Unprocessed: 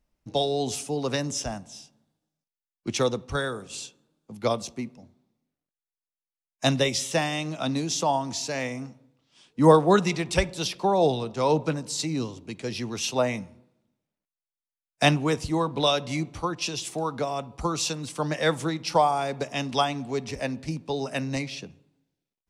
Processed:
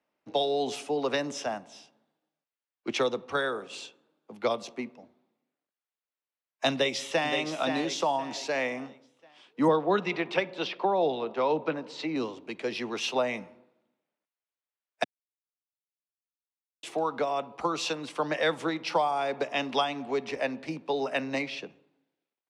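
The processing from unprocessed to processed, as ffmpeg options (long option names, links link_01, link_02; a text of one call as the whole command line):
ffmpeg -i in.wav -filter_complex "[0:a]asplit=2[link_01][link_02];[link_02]afade=type=in:start_time=6.71:duration=0.01,afade=type=out:start_time=7.32:duration=0.01,aecho=0:1:520|1040|1560|2080:0.398107|0.139338|0.0487681|0.0170688[link_03];[link_01][link_03]amix=inputs=2:normalize=0,asettb=1/sr,asplit=3[link_04][link_05][link_06];[link_04]atrim=end=9.684[link_07];[link_05]atrim=start=9.68:end=12.16,asetpts=PTS-STARTPTS,afade=type=in:duration=0.004:curve=qsin,afade=type=out:start_time=2.476:duration=0.004:curve=qsin,highpass=140,lowpass=3500[link_08];[link_06]atrim=start=12.156[link_09];[link_07][link_08]acrossfade=duration=0.004:curve1=hsin:curve2=qsin[link_10];[link_10][link_09]acrossfade=duration=0.004:curve1=qsin:curve2=hsin,asplit=3[link_11][link_12][link_13];[link_11]atrim=end=15.04,asetpts=PTS-STARTPTS,afade=type=out:start_time=15.036:duration=0.004:curve=hsin[link_14];[link_12]atrim=start=15.04:end=16.83,asetpts=PTS-STARTPTS,volume=0[link_15];[link_13]atrim=start=16.83,asetpts=PTS-STARTPTS,afade=type=in:duration=0.004:curve=hsin[link_16];[link_14][link_15][link_16]concat=n=3:v=0:a=1,highpass=150,acrossover=split=300 3600:gain=0.178 1 0.141[link_17][link_18][link_19];[link_17][link_18][link_19]amix=inputs=3:normalize=0,acrossover=split=230|3000[link_20][link_21][link_22];[link_21]acompressor=threshold=-30dB:ratio=3[link_23];[link_20][link_23][link_22]amix=inputs=3:normalize=0,volume=4dB" out.wav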